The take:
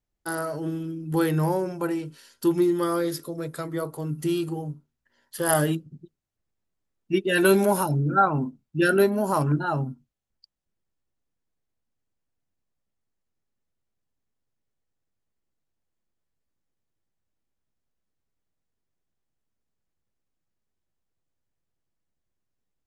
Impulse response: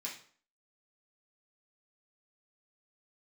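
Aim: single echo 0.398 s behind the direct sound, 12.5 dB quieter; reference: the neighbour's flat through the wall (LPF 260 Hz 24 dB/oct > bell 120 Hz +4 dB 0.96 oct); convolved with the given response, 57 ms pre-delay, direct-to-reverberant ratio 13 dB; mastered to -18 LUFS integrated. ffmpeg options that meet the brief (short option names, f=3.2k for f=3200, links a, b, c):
-filter_complex "[0:a]aecho=1:1:398:0.237,asplit=2[a][b];[1:a]atrim=start_sample=2205,adelay=57[c];[b][c]afir=irnorm=-1:irlink=0,volume=-12.5dB[d];[a][d]amix=inputs=2:normalize=0,lowpass=f=260:w=0.5412,lowpass=f=260:w=1.3066,equalizer=f=120:t=o:w=0.96:g=4,volume=11.5dB"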